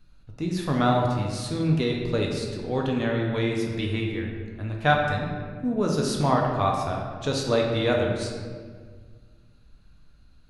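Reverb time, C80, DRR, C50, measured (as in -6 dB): 1.7 s, 4.0 dB, -1.0 dB, 2.0 dB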